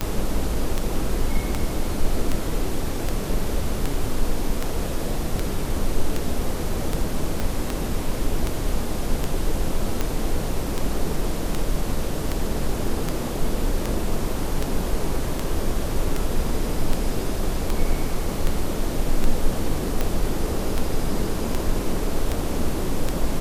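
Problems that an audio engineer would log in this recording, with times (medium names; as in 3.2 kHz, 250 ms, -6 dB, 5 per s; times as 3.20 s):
tick 78 rpm -9 dBFS
7.40 s: pop -12 dBFS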